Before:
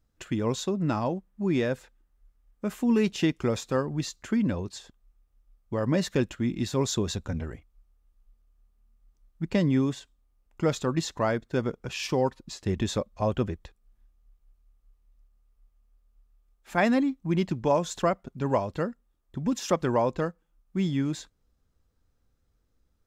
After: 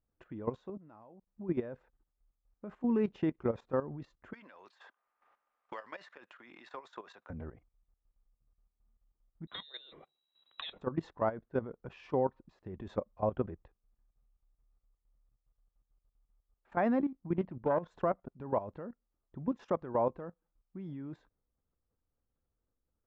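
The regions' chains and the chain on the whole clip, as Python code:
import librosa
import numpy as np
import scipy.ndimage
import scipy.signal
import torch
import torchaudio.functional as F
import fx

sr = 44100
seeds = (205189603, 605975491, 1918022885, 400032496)

y = fx.chain(x, sr, fx.low_shelf(hz=410.0, db=-5.5),
    fx.level_steps(step_db=23), at=(0.77, 1.27))
y = fx.chain(y, sr, fx.highpass(hz=1300.0, slope=12),
    fx.transient(attack_db=4, sustain_db=9),
    fx.band_squash(depth_pct=100), at=(4.33, 7.3))
y = fx.chain(y, sr, fx.peak_eq(hz=590.0, db=6.0, octaves=0.48),
    fx.freq_invert(carrier_hz=3900),
    fx.band_squash(depth_pct=100), at=(9.47, 10.81))
y = fx.chain(y, sr, fx.self_delay(depth_ms=0.15),
    fx.lowpass(hz=3700.0, slope=12), at=(17.38, 17.88))
y = scipy.signal.sosfilt(scipy.signal.butter(2, 1100.0, 'lowpass', fs=sr, output='sos'), y)
y = fx.low_shelf(y, sr, hz=320.0, db=-7.0)
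y = fx.level_steps(y, sr, step_db=14)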